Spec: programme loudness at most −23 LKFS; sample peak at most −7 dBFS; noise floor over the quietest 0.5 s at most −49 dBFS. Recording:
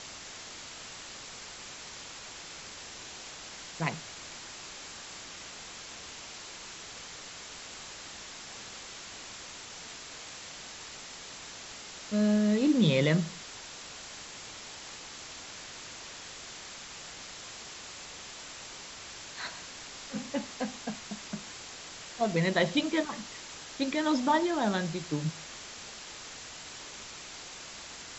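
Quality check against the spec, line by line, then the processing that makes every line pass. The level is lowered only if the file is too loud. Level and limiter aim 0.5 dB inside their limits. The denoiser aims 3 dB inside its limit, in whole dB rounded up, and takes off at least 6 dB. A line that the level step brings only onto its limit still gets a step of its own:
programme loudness −35.0 LKFS: in spec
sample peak −11.5 dBFS: in spec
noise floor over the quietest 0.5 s −45 dBFS: out of spec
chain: broadband denoise 7 dB, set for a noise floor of −45 dBFS

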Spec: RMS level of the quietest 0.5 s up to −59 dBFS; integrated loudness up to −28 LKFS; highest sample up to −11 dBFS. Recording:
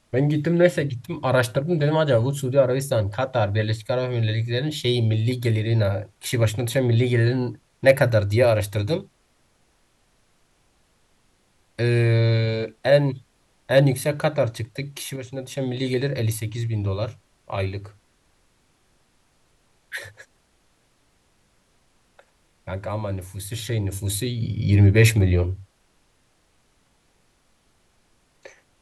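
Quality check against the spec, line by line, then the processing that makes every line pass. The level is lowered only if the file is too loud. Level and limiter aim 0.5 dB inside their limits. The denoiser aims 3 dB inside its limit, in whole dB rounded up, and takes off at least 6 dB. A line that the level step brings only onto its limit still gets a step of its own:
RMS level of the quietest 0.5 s −63 dBFS: in spec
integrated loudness −22.5 LKFS: out of spec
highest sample −4.0 dBFS: out of spec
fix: level −6 dB
brickwall limiter −11.5 dBFS

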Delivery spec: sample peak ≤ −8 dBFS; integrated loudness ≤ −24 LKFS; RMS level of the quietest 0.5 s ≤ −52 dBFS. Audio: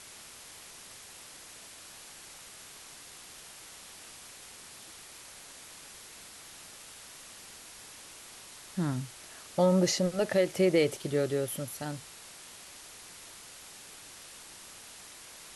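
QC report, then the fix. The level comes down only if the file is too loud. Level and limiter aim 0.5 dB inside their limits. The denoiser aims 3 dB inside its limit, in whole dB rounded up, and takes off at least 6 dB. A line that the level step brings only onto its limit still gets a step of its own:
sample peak −14.0 dBFS: in spec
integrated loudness −29.5 LKFS: in spec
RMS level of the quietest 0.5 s −50 dBFS: out of spec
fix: broadband denoise 6 dB, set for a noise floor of −50 dBFS

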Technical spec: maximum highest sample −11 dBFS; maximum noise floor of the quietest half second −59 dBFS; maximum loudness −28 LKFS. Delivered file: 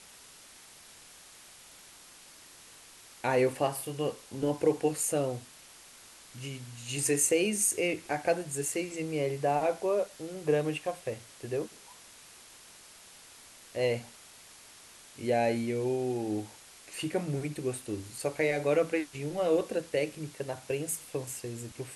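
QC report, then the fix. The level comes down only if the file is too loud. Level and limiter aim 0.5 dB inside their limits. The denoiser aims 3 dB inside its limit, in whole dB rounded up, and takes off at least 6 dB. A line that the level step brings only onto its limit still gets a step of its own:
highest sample −12.0 dBFS: in spec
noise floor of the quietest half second −53 dBFS: out of spec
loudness −31.5 LKFS: in spec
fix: broadband denoise 9 dB, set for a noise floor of −53 dBFS

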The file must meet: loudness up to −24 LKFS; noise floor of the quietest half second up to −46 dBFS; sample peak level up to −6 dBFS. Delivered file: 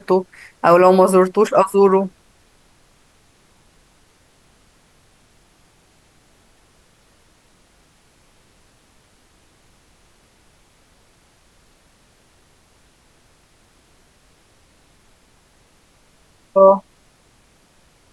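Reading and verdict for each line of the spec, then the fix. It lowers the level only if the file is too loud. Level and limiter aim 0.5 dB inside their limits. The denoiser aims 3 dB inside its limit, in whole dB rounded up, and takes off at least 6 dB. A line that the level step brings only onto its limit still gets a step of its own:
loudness −14.5 LKFS: out of spec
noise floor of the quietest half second −55 dBFS: in spec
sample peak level −2.0 dBFS: out of spec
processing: level −10 dB

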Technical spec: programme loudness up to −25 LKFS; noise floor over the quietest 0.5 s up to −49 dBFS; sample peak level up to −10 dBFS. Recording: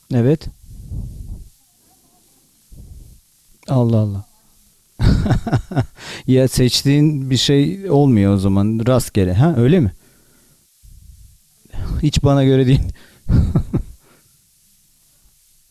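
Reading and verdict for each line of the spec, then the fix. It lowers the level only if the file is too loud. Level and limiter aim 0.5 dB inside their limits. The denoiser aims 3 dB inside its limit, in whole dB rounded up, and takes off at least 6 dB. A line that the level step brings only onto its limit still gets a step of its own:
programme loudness −16.0 LKFS: out of spec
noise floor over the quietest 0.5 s −55 dBFS: in spec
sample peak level −4.0 dBFS: out of spec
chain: level −9.5 dB

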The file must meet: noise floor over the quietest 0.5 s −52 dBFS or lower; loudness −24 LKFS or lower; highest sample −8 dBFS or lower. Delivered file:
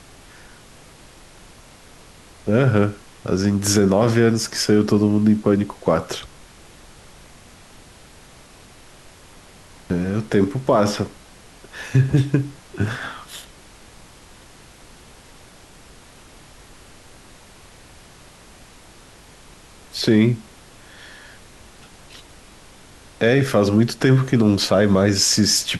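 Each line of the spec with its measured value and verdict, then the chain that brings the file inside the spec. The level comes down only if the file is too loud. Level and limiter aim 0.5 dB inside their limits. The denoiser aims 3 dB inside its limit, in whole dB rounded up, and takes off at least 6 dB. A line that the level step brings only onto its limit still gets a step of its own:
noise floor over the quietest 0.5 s −46 dBFS: out of spec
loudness −19.0 LKFS: out of spec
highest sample −5.5 dBFS: out of spec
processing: broadband denoise 6 dB, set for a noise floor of −46 dBFS
level −5.5 dB

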